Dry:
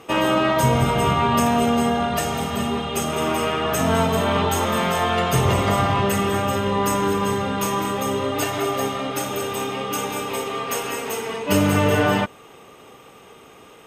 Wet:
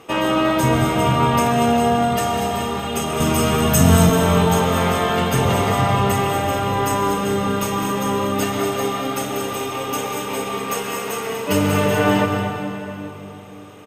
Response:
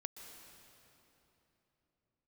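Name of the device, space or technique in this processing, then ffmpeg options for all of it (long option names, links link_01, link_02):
cave: -filter_complex "[0:a]asettb=1/sr,asplit=3[link_01][link_02][link_03];[link_01]atrim=end=3.204[link_04];[link_02]atrim=start=3.2:end=4.1,asetpts=PTS-STARTPTS,afade=type=in:duration=0.004:curve=qsin,afade=type=out:start_time=0.896:duration=0.004:curve=qsin,bass=frequency=250:gain=13,treble=frequency=4000:gain=10[link_05];[link_03]atrim=start=4.096[link_06];[link_04][link_05]acrossfade=duration=0.004:curve1=hsin:curve2=qsin[link_07];[link_07][link_06]acrossfade=duration=0.004:curve1=qsin:curve2=hsin,aecho=1:1:240:0.299[link_08];[1:a]atrim=start_sample=2205[link_09];[link_08][link_09]afir=irnorm=-1:irlink=0,volume=4dB"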